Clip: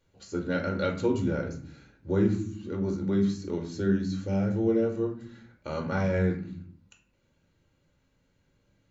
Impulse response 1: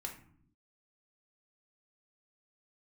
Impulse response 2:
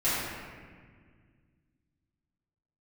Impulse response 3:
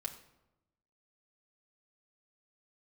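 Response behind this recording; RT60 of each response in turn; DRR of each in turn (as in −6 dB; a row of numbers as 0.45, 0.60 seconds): 1; non-exponential decay, 1.8 s, 0.95 s; 0.5, −13.5, 0.5 decibels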